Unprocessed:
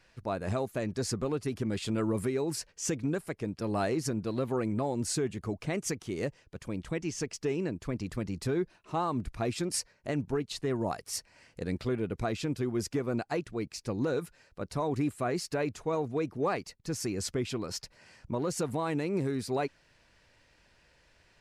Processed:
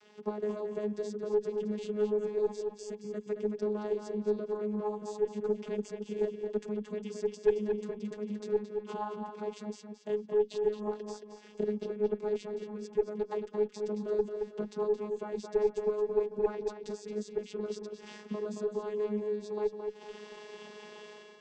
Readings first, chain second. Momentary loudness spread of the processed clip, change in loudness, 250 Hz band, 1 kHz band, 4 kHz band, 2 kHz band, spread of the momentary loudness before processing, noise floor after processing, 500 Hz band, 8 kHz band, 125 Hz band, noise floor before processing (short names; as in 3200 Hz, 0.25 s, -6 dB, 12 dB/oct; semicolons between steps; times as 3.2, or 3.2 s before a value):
11 LU, -1.0 dB, -5.5 dB, -6.0 dB, -11.0 dB, -10.0 dB, 6 LU, -54 dBFS, +3.0 dB, under -15 dB, under -10 dB, -66 dBFS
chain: high shelf 3200 Hz +12 dB; AGC; in parallel at 0 dB: limiter -20 dBFS, peak gain reduction 17.5 dB; on the sum: transient shaper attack -1 dB, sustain -7 dB; compressor 10:1, threshold -35 dBFS, peak gain reduction 25 dB; small resonant body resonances 440/870/2900 Hz, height 17 dB, ringing for 90 ms; vocoder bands 16, saw 210 Hz; added harmonics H 4 -20 dB, 6 -28 dB, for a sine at -16.5 dBFS; on a send: darkening echo 0.222 s, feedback 39%, low-pass 4600 Hz, level -6 dB